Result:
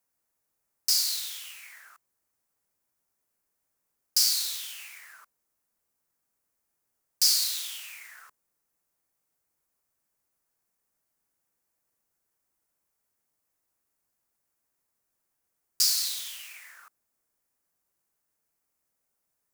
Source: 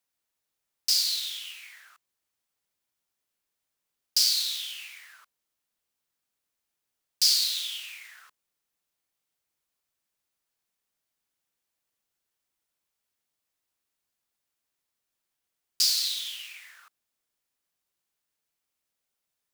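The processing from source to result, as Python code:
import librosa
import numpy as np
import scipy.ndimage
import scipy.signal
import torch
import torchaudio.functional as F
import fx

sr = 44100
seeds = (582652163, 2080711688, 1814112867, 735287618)

y = fx.peak_eq(x, sr, hz=3400.0, db=-12.0, octaves=1.2)
y = y * librosa.db_to_amplitude(5.0)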